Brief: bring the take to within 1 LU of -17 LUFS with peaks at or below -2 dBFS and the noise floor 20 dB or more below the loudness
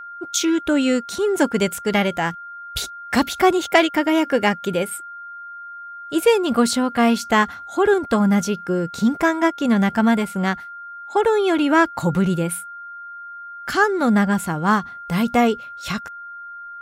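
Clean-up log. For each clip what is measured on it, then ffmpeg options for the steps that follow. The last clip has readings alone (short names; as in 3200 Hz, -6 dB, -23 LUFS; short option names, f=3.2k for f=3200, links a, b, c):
steady tone 1400 Hz; tone level -33 dBFS; loudness -19.5 LUFS; peak -1.5 dBFS; loudness target -17.0 LUFS
-> -af "bandreject=f=1.4k:w=30"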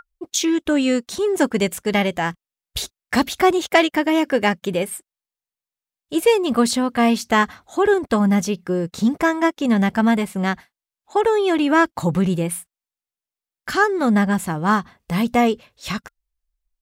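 steady tone none; loudness -20.0 LUFS; peak -2.0 dBFS; loudness target -17.0 LUFS
-> -af "volume=3dB,alimiter=limit=-2dB:level=0:latency=1"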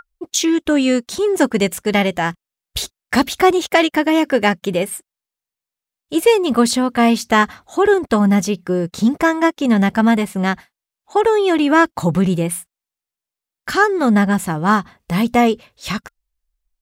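loudness -17.0 LUFS; peak -2.0 dBFS; noise floor -88 dBFS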